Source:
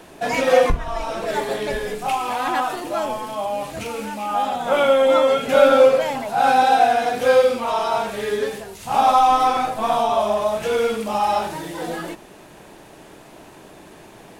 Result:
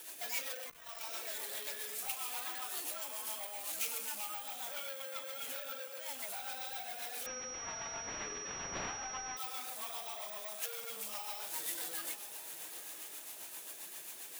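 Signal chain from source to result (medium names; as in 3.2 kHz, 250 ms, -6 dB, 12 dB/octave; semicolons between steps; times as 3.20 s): compression 6:1, threshold -28 dBFS, peak gain reduction 18.5 dB; flange 0.84 Hz, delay 2.1 ms, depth 5.9 ms, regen -48%; rotary cabinet horn 7.5 Hz; echo that smears into a reverb 887 ms, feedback 45%, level -13.5 dB; saturation -35 dBFS, distortion -12 dB; differentiator; careless resampling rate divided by 2×, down none, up zero stuff; 7.26–9.37 s: class-D stage that switches slowly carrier 5.7 kHz; trim +11 dB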